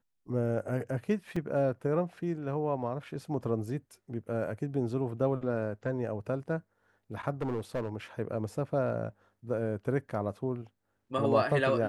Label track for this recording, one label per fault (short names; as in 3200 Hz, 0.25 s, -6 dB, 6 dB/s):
1.360000	1.360000	gap 4.3 ms
7.410000	7.960000	clipped -28 dBFS